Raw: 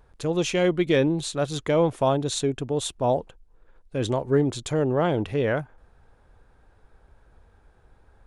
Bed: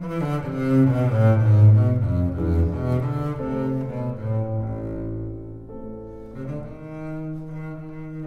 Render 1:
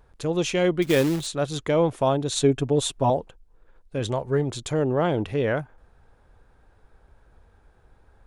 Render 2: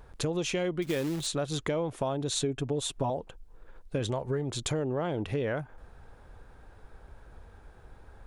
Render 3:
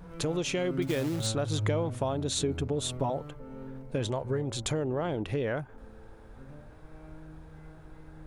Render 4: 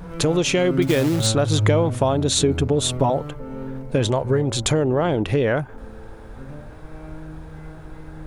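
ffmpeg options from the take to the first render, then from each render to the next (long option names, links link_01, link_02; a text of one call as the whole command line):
ffmpeg -i in.wav -filter_complex "[0:a]asettb=1/sr,asplit=3[link_01][link_02][link_03];[link_01]atrim=end=0.824[link_04];[link_02]atrim=start=0.82:end=1.27,asetpts=PTS-STARTPTS,afade=type=in:duration=0.004:curve=qsin,afade=type=out:start_time=0.446:duration=0.004:curve=qsin,acrusher=bits=3:mode=log:mix=0:aa=0.000001[link_05];[link_03]atrim=start=1.266[link_06];[link_04][link_05]acrossfade=duration=0.004:curve1=hsin:curve2=qsin[link_07];[link_07][link_06]acrossfade=duration=0.004:curve1=qsin:curve2=hsin,asettb=1/sr,asplit=3[link_08][link_09][link_10];[link_08]atrim=end=2.354[link_11];[link_09]atrim=start=2.35:end=3.1,asetpts=PTS-STARTPTS,afade=type=in:duration=0.004:curve=qsin,afade=type=out:start_time=0.746:duration=0.004:curve=qsin,aecho=1:1:7.2:0.95,atrim=end_sample=33075[link_12];[link_10]atrim=start=3.096[link_13];[link_11][link_12]acrossfade=duration=0.004:curve1=hsin:curve2=qsin[link_14];[link_14][link_13]acrossfade=duration=0.004:curve1=qsin:curve2=hsin,asettb=1/sr,asplit=3[link_15][link_16][link_17];[link_15]atrim=end=3.994[link_18];[link_16]atrim=start=3.99:end=4.52,asetpts=PTS-STARTPTS,afade=type=in:duration=0.004:curve=qsin,afade=type=out:start_time=0.526:duration=0.004:curve=qsin,equalizer=frequency=300:width_type=o:width=0.72:gain=-6.5[link_19];[link_17]atrim=start=4.516[link_20];[link_18][link_19]acrossfade=duration=0.004:curve1=hsin:curve2=qsin[link_21];[link_21][link_20]acrossfade=duration=0.004:curve1=qsin:curve2=hsin" out.wav
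ffmpeg -i in.wav -filter_complex "[0:a]asplit=2[link_01][link_02];[link_02]alimiter=limit=-21dB:level=0:latency=1,volume=-2dB[link_03];[link_01][link_03]amix=inputs=2:normalize=0,acompressor=threshold=-28dB:ratio=6" out.wav
ffmpeg -i in.wav -i bed.wav -filter_complex "[1:a]volume=-18.5dB[link_01];[0:a][link_01]amix=inputs=2:normalize=0" out.wav
ffmpeg -i in.wav -af "volume=11dB" out.wav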